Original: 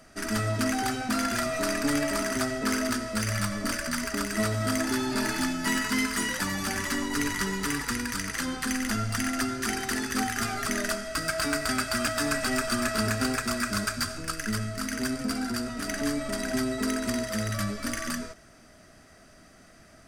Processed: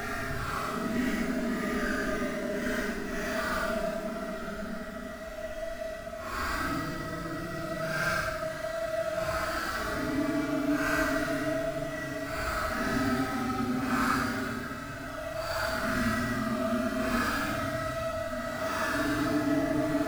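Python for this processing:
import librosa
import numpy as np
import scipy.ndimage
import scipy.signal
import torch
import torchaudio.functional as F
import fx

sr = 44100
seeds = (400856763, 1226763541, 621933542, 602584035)

y = scipy.signal.medfilt(x, 15)
y = fx.paulstretch(y, sr, seeds[0], factor=12.0, window_s=0.05, from_s=10.62)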